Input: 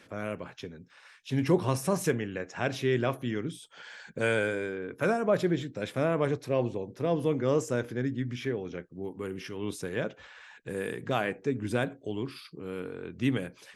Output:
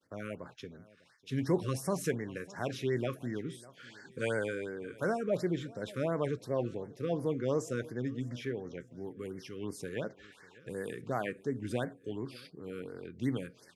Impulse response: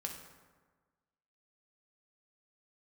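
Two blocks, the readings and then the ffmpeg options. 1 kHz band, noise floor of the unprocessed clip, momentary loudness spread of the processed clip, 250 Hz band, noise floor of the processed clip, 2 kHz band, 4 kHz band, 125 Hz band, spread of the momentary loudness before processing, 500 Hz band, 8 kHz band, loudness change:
−6.5 dB, −58 dBFS, 13 LU, −5.0 dB, −61 dBFS, −7.5 dB, −6.5 dB, −5.0 dB, 14 LU, −5.0 dB, −5.0 dB, −5.5 dB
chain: -filter_complex "[0:a]agate=range=-33dB:threshold=-49dB:ratio=3:detection=peak,asplit=2[link_01][link_02];[link_02]aecho=0:1:600|1200|1800:0.0841|0.0311|0.0115[link_03];[link_01][link_03]amix=inputs=2:normalize=0,afftfilt=real='re*(1-between(b*sr/1024,740*pow(3200/740,0.5+0.5*sin(2*PI*2.8*pts/sr))/1.41,740*pow(3200/740,0.5+0.5*sin(2*PI*2.8*pts/sr))*1.41))':imag='im*(1-between(b*sr/1024,740*pow(3200/740,0.5+0.5*sin(2*PI*2.8*pts/sr))/1.41,740*pow(3200/740,0.5+0.5*sin(2*PI*2.8*pts/sr))*1.41))':win_size=1024:overlap=0.75,volume=-5dB"

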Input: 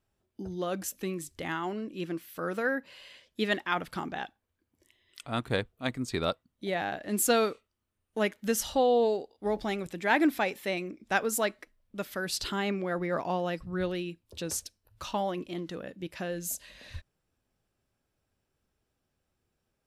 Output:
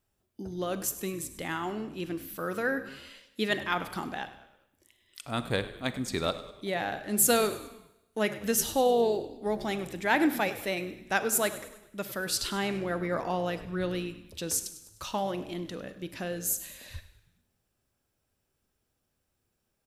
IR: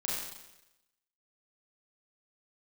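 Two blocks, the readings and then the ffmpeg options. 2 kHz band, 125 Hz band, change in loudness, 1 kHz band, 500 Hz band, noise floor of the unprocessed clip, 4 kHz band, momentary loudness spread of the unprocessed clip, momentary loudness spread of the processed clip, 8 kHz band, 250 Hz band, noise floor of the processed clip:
+0.5 dB, +0.5 dB, +1.0 dB, 0.0 dB, 0.0 dB, −81 dBFS, +1.5 dB, 15 LU, 16 LU, +5.0 dB, 0.0 dB, −79 dBFS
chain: -filter_complex "[0:a]highshelf=frequency=7000:gain=8.5,asplit=5[link_01][link_02][link_03][link_04][link_05];[link_02]adelay=101,afreqshift=-65,volume=-16dB[link_06];[link_03]adelay=202,afreqshift=-130,volume=-22.4dB[link_07];[link_04]adelay=303,afreqshift=-195,volume=-28.8dB[link_08];[link_05]adelay=404,afreqshift=-260,volume=-35.1dB[link_09];[link_01][link_06][link_07][link_08][link_09]amix=inputs=5:normalize=0,asplit=2[link_10][link_11];[1:a]atrim=start_sample=2205[link_12];[link_11][link_12]afir=irnorm=-1:irlink=0,volume=-16dB[link_13];[link_10][link_13]amix=inputs=2:normalize=0,volume=-1.5dB"

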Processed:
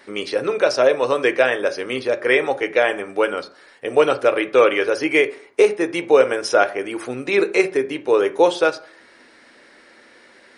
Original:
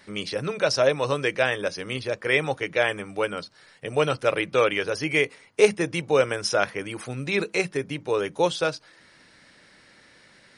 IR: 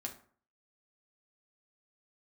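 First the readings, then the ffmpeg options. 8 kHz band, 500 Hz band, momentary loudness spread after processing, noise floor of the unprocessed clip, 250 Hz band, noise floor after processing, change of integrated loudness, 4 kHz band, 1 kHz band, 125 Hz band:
0.0 dB, +7.0 dB, 8 LU, −55 dBFS, +6.0 dB, −50 dBFS, +6.0 dB, +1.5 dB, +6.5 dB, −7.5 dB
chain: -filter_complex "[0:a]lowshelf=frequency=220:width_type=q:width=1.5:gain=-11.5,alimiter=limit=-9dB:level=0:latency=1:release=390,asplit=2[link_01][link_02];[1:a]atrim=start_sample=2205,lowpass=3000[link_03];[link_02][link_03]afir=irnorm=-1:irlink=0,volume=0dB[link_04];[link_01][link_04]amix=inputs=2:normalize=0,volume=2dB"

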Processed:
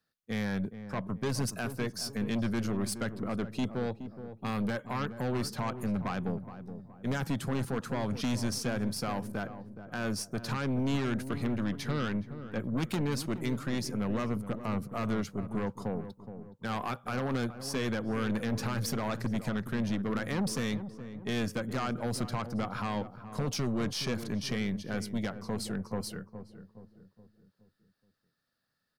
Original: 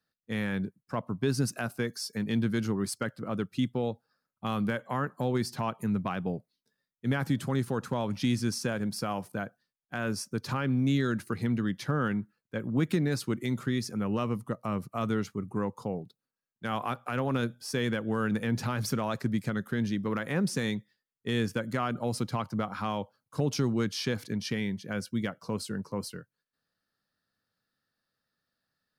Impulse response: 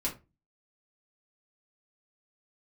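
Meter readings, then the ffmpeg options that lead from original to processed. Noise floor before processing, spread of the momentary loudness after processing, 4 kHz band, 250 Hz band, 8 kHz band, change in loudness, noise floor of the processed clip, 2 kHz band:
below −85 dBFS, 7 LU, −1.0 dB, −2.0 dB, 0.0 dB, −2.0 dB, −75 dBFS, −2.5 dB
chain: -filter_complex "[0:a]aeval=exprs='0.158*(cos(1*acos(clip(val(0)/0.158,-1,1)))-cos(1*PI/2))+0.0398*(cos(3*acos(clip(val(0)/0.158,-1,1)))-cos(3*PI/2))+0.0398*(cos(5*acos(clip(val(0)/0.158,-1,1)))-cos(5*PI/2))+0.00794*(cos(8*acos(clip(val(0)/0.158,-1,1)))-cos(8*PI/2))':channel_layout=same,asplit=2[link_01][link_02];[link_02]adelay=420,lowpass=frequency=900:poles=1,volume=-10dB,asplit=2[link_03][link_04];[link_04]adelay=420,lowpass=frequency=900:poles=1,volume=0.49,asplit=2[link_05][link_06];[link_06]adelay=420,lowpass=frequency=900:poles=1,volume=0.49,asplit=2[link_07][link_08];[link_08]adelay=420,lowpass=frequency=900:poles=1,volume=0.49,asplit=2[link_09][link_10];[link_10]adelay=420,lowpass=frequency=900:poles=1,volume=0.49[link_11];[link_01][link_03][link_05][link_07][link_09][link_11]amix=inputs=6:normalize=0,volume=-3dB"

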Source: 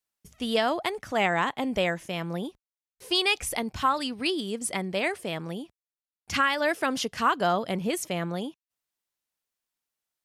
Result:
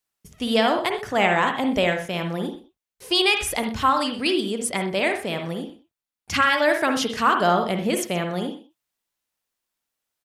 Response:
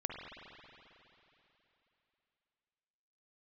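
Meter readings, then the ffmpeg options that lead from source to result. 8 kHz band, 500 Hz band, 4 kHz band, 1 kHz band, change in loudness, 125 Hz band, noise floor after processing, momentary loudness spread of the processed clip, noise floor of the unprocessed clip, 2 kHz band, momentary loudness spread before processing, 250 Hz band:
+4.0 dB, +5.5 dB, +5.0 dB, +5.5 dB, +5.5 dB, +4.5 dB, below −85 dBFS, 11 LU, below −85 dBFS, +5.5 dB, 11 LU, +5.5 dB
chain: -filter_complex "[0:a]aecho=1:1:125:0.126[link_01];[1:a]atrim=start_sample=2205,atrim=end_sample=4410[link_02];[link_01][link_02]afir=irnorm=-1:irlink=0,volume=6dB"

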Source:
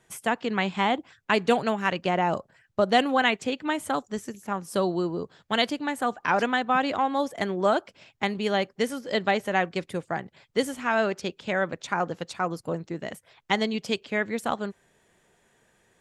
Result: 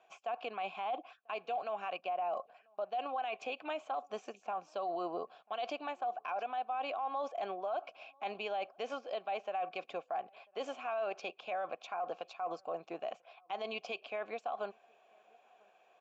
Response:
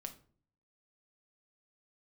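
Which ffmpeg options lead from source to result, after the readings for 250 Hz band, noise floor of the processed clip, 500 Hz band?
−22.5 dB, −68 dBFS, −11.5 dB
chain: -filter_complex "[0:a]asplit=3[link_01][link_02][link_03];[link_01]bandpass=frequency=730:width_type=q:width=8,volume=0dB[link_04];[link_02]bandpass=frequency=1090:width_type=q:width=8,volume=-6dB[link_05];[link_03]bandpass=frequency=2440:width_type=q:width=8,volume=-9dB[link_06];[link_04][link_05][link_06]amix=inputs=3:normalize=0,bandreject=frequency=1200:width=12,areverse,acompressor=threshold=-40dB:ratio=4,areverse,highpass=frequency=490:poles=1,alimiter=level_in=18.5dB:limit=-24dB:level=0:latency=1:release=50,volume=-18.5dB,aresample=16000,aresample=44100,asplit=2[link_07][link_08];[link_08]adelay=991.3,volume=-29dB,highshelf=frequency=4000:gain=-22.3[link_09];[link_07][link_09]amix=inputs=2:normalize=0,volume=13dB"

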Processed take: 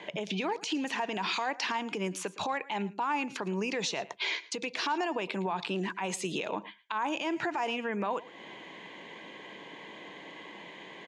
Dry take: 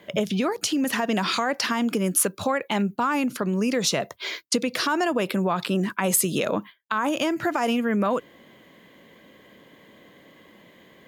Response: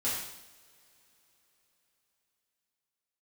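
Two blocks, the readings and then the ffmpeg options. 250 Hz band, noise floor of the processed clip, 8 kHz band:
−11.0 dB, −51 dBFS, −14.5 dB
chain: -filter_complex "[0:a]acompressor=threshold=-35dB:ratio=3,highpass=220,equalizer=frequency=240:width_type=q:width=4:gain=-8,equalizer=frequency=550:width_type=q:width=4:gain=-6,equalizer=frequency=890:width_type=q:width=4:gain=8,equalizer=frequency=1300:width_type=q:width=4:gain=-6,equalizer=frequency=2500:width_type=q:width=4:gain=5,equalizer=frequency=5100:width_type=q:width=4:gain=-4,lowpass=frequency=6700:width=0.5412,lowpass=frequency=6700:width=1.3066,alimiter=level_in=5dB:limit=-24dB:level=0:latency=1:release=83,volume=-5dB,asplit=2[link_01][link_02];[link_02]aecho=0:1:112:0.112[link_03];[link_01][link_03]amix=inputs=2:normalize=0,volume=6.5dB"

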